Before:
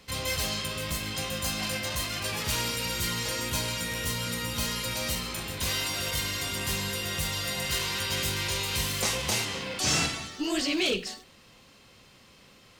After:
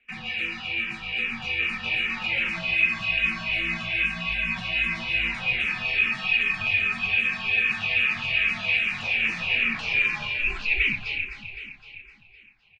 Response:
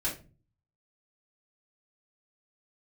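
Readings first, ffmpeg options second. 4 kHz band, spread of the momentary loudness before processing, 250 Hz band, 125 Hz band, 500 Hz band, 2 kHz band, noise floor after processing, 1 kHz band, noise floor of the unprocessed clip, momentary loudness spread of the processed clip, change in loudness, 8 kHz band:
−1.0 dB, 5 LU, −4.5 dB, −5.5 dB, −8.5 dB, +11.5 dB, −53 dBFS, −2.0 dB, −56 dBFS, 7 LU, +5.5 dB, below −20 dB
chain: -filter_complex "[0:a]agate=range=-13dB:threshold=-47dB:ratio=16:detection=peak,highpass=120,dynaudnorm=framelen=230:gausssize=21:maxgain=11.5dB,alimiter=limit=-14.5dB:level=0:latency=1:release=174,acompressor=threshold=-26dB:ratio=4,afreqshift=-290,lowpass=frequency=2500:width_type=q:width=11,flanger=delay=4.2:depth=8.1:regen=-37:speed=0.94:shape=sinusoidal,asplit=2[link_01][link_02];[link_02]adelay=18,volume=-11dB[link_03];[link_01][link_03]amix=inputs=2:normalize=0,asplit=2[link_04][link_05];[link_05]aecho=0:1:256|512|768|1024|1280|1536|1792:0.398|0.235|0.139|0.0818|0.0482|0.0285|0.0168[link_06];[link_04][link_06]amix=inputs=2:normalize=0,asplit=2[link_07][link_08];[link_08]afreqshift=-2.5[link_09];[link_07][link_09]amix=inputs=2:normalize=1"

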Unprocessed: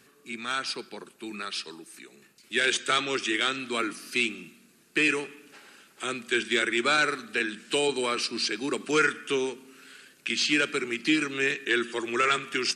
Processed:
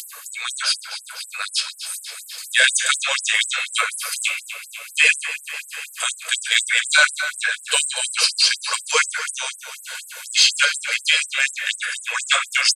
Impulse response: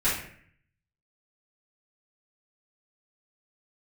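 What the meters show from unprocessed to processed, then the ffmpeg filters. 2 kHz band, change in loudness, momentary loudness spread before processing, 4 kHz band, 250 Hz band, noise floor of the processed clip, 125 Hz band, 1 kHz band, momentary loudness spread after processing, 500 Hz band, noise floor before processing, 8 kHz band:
+8.0 dB, +8.0 dB, 13 LU, +10.5 dB, below −40 dB, −42 dBFS, below −40 dB, +2.5 dB, 16 LU, −6.0 dB, −60 dBFS, +15.0 dB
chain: -filter_complex "[0:a]aemphasis=mode=production:type=cd,bandreject=frequency=5600:width=10,aecho=1:1:1.9:0.33,aecho=1:1:253|506|759|1012|1265|1518:0.2|0.11|0.0604|0.0332|0.0183|0.01,acontrast=46,asplit=2[link_01][link_02];[1:a]atrim=start_sample=2205,asetrate=38808,aresample=44100[link_03];[link_02][link_03]afir=irnorm=-1:irlink=0,volume=-16dB[link_04];[link_01][link_04]amix=inputs=2:normalize=0,acompressor=mode=upward:threshold=-24dB:ratio=2.5,afftfilt=real='re*gte(b*sr/1024,460*pow(7900/460,0.5+0.5*sin(2*PI*4.1*pts/sr)))':imag='im*gte(b*sr/1024,460*pow(7900/460,0.5+0.5*sin(2*PI*4.1*pts/sr)))':win_size=1024:overlap=0.75,volume=1.5dB"

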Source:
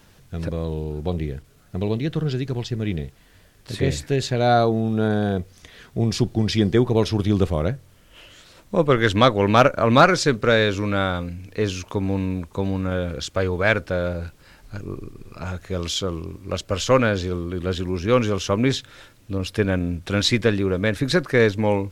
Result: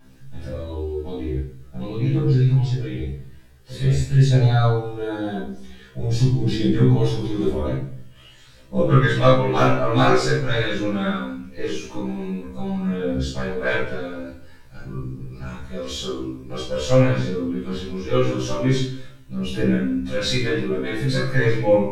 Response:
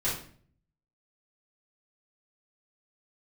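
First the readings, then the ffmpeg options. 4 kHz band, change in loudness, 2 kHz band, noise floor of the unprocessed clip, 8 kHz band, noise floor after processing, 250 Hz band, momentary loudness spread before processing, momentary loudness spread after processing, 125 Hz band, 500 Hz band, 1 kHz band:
−3.0 dB, 0.0 dB, −2.5 dB, −53 dBFS, −3.5 dB, −46 dBFS, −0.5 dB, 15 LU, 16 LU, +4.0 dB, −1.5 dB, −3.5 dB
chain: -filter_complex "[0:a]aphaser=in_gain=1:out_gain=1:delay=3.4:decay=0.51:speed=0.46:type=triangular[link_01];[1:a]atrim=start_sample=2205,asetrate=36603,aresample=44100[link_02];[link_01][link_02]afir=irnorm=-1:irlink=0,afftfilt=real='re*1.73*eq(mod(b,3),0)':imag='im*1.73*eq(mod(b,3),0)':win_size=2048:overlap=0.75,volume=-10dB"

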